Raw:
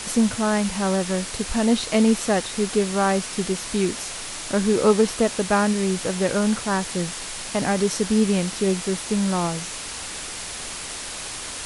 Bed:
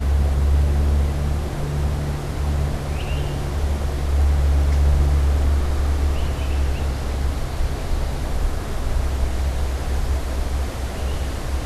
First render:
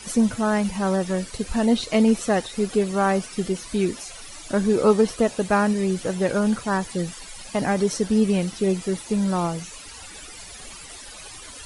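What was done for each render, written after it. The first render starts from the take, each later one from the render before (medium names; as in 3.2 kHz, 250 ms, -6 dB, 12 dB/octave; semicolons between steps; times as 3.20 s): noise reduction 14 dB, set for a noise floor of -33 dBFS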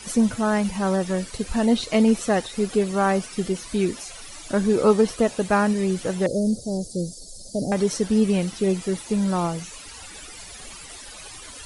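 6.26–7.72 s: elliptic band-stop 600–4500 Hz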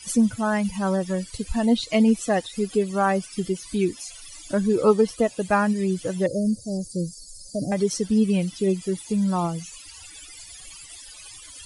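expander on every frequency bin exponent 1.5; in parallel at -2.5 dB: compression, threshold -31 dBFS, peak gain reduction 17 dB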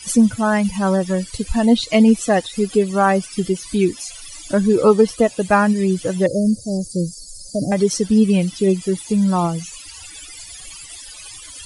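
trim +6 dB; peak limiter -2 dBFS, peak gain reduction 1.5 dB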